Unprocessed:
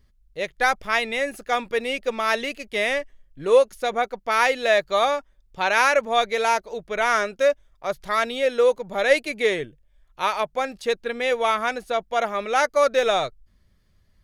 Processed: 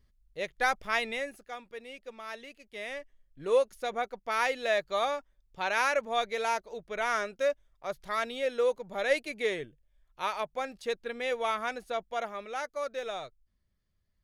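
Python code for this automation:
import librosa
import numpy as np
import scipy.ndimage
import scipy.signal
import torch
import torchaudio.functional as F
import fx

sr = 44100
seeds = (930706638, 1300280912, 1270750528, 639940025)

y = fx.gain(x, sr, db=fx.line((1.1, -7.0), (1.56, -19.0), (2.6, -19.0), (3.43, -9.0), (12.04, -9.0), (12.65, -16.0)))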